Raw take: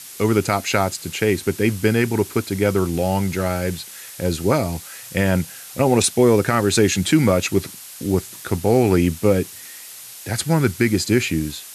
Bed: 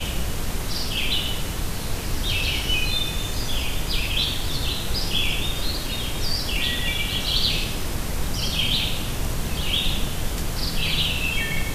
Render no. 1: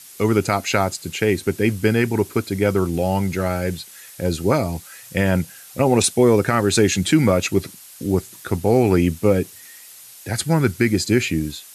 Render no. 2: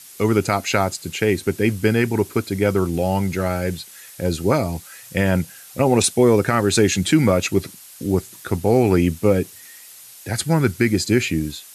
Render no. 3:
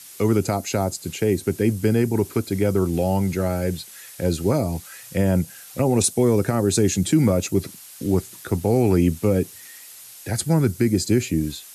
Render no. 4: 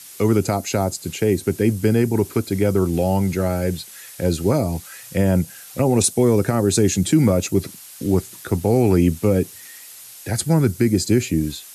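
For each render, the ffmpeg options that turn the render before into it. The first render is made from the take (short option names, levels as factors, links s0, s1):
-af "afftdn=nr=6:nf=-38"
-af anull
-filter_complex "[0:a]acrossover=split=240|820|5100[s0][s1][s2][s3];[s1]alimiter=limit=0.188:level=0:latency=1[s4];[s2]acompressor=threshold=0.0158:ratio=6[s5];[s0][s4][s5][s3]amix=inputs=4:normalize=0"
-af "volume=1.26"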